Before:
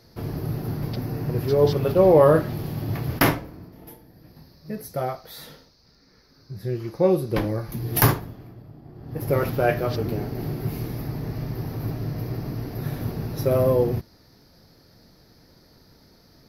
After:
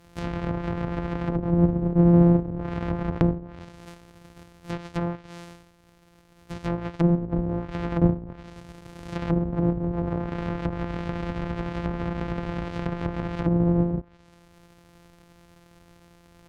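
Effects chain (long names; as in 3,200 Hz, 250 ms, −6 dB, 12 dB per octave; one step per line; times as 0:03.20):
samples sorted by size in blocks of 256 samples
treble cut that deepens with the level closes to 430 Hz, closed at −20 dBFS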